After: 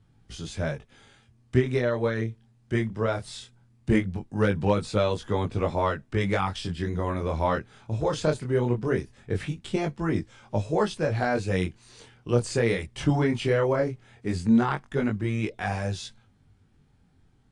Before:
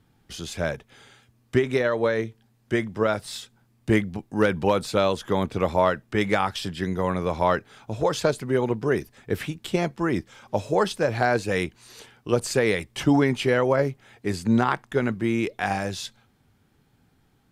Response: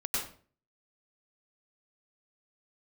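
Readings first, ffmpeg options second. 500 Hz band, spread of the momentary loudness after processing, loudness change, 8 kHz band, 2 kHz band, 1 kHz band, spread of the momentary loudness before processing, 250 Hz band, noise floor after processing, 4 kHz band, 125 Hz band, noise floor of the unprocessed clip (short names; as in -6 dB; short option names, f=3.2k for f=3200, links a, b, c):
-3.0 dB, 9 LU, -2.5 dB, -5.0 dB, -4.5 dB, -4.5 dB, 9 LU, -1.5 dB, -62 dBFS, -4.5 dB, +2.0 dB, -64 dBFS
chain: -af "lowshelf=f=150:g=11.5,flanger=delay=18.5:depth=8:speed=0.19,volume=-1.5dB" -ar 22050 -c:a aac -b:a 64k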